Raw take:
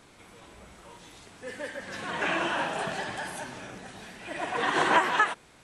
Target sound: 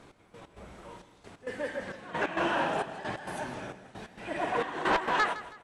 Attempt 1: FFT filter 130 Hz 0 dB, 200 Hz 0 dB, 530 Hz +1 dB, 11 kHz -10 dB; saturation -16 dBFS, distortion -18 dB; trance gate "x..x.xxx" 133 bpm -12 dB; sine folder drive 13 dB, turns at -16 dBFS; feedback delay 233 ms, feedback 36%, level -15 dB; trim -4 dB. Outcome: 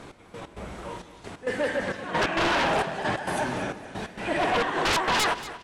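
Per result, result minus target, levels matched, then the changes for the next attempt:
sine folder: distortion +17 dB; echo 72 ms late
change: sine folder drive 3 dB, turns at -16 dBFS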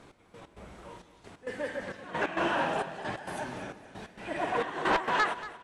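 echo 72 ms late
change: feedback delay 161 ms, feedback 36%, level -15 dB

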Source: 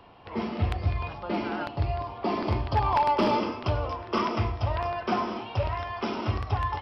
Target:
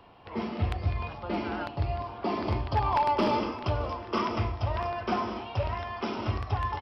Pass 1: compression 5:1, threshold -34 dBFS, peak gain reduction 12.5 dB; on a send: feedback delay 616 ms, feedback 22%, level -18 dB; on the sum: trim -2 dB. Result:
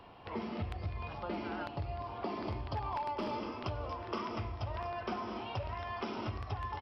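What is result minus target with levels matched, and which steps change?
compression: peak gain reduction +12.5 dB
remove: compression 5:1, threshold -34 dBFS, peak gain reduction 12.5 dB

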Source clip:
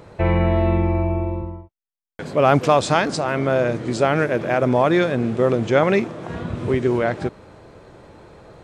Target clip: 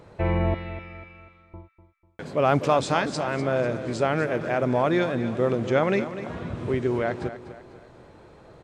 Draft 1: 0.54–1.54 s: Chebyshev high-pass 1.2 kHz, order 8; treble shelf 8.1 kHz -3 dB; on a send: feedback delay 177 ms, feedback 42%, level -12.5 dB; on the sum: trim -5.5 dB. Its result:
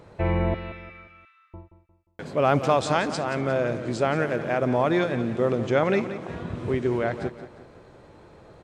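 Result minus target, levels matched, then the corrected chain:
echo 70 ms early
0.54–1.54 s: Chebyshev high-pass 1.2 kHz, order 8; treble shelf 8.1 kHz -3 dB; on a send: feedback delay 247 ms, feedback 42%, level -12.5 dB; on the sum: trim -5.5 dB

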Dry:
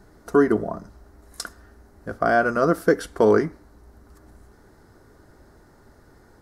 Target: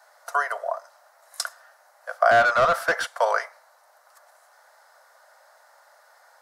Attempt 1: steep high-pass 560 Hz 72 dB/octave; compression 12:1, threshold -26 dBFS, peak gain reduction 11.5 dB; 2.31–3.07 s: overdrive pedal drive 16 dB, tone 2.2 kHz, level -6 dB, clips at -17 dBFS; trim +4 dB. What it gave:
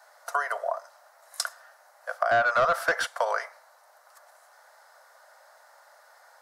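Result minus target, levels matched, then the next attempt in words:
compression: peak gain reduction +11.5 dB
steep high-pass 560 Hz 72 dB/octave; 2.31–3.07 s: overdrive pedal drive 16 dB, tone 2.2 kHz, level -6 dB, clips at -17 dBFS; trim +4 dB

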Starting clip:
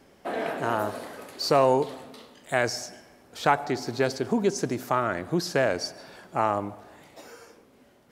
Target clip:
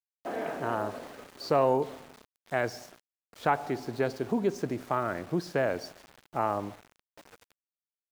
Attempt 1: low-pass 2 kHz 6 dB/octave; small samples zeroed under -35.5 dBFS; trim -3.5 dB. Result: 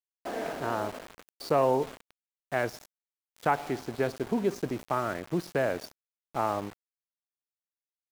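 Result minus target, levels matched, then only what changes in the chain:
small samples zeroed: distortion +7 dB
change: small samples zeroed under -42.5 dBFS

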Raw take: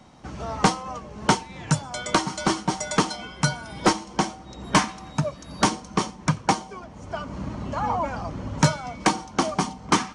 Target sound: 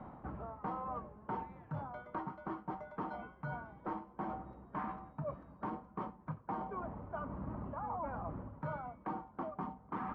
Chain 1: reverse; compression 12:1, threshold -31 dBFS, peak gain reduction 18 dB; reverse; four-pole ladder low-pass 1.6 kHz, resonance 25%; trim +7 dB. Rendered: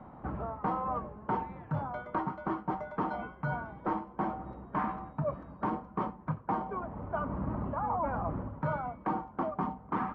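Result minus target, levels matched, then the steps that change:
compression: peak gain reduction -8 dB
change: compression 12:1, threshold -40 dBFS, peak gain reduction 26.5 dB

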